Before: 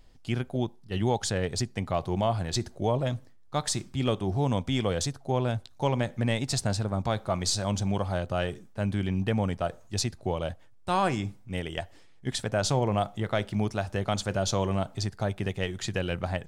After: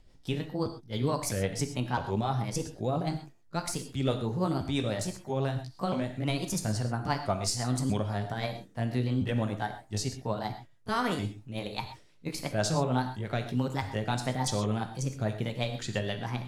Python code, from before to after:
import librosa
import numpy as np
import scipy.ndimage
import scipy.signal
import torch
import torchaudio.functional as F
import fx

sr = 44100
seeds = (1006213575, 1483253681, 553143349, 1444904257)

y = fx.pitch_ramps(x, sr, semitones=5.5, every_ms=658)
y = fx.rotary(y, sr, hz=6.0)
y = fx.rev_gated(y, sr, seeds[0], gate_ms=150, shape='flat', drr_db=7.0)